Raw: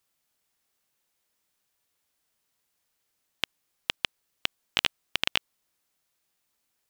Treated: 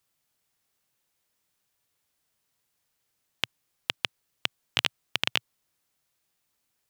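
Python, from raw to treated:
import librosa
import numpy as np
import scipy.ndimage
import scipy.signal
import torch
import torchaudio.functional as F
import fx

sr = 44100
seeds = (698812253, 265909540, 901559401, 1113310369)

y = fx.peak_eq(x, sr, hz=120.0, db=6.0, octaves=0.81)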